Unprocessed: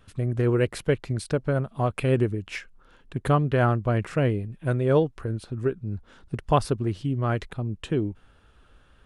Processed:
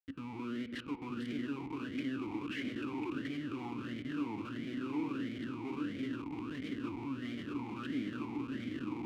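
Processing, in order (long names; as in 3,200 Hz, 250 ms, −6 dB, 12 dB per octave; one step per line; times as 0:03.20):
feedback delay that plays each chunk backwards 419 ms, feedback 72%, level −11 dB
0:02.58–0:03.20: spectral tilt +2 dB per octave
downward compressor 16 to 1, threshold −27 dBFS, peak gain reduction 13.5 dB
comparator with hysteresis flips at −41 dBFS
on a send at −8 dB: high-frequency loss of the air 230 metres + convolution reverb RT60 4.2 s, pre-delay 3 ms
on the sum: formant filter swept between two vowels i-u 1.5 Hz
level +6 dB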